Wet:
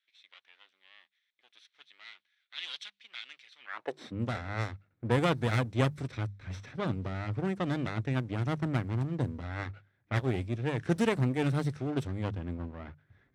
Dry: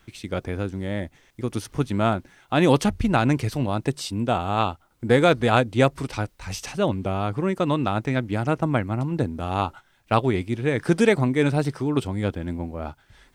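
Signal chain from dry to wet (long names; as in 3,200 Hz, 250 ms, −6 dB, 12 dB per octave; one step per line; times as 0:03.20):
lower of the sound and its delayed copy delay 0.52 ms
high-pass filter sweep 3,400 Hz → 97 Hz, 0:03.58–0:04.18
mains-hum notches 50/100/150/200 Hz
low-pass that shuts in the quiet parts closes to 1,600 Hz, open at −16 dBFS
level −9 dB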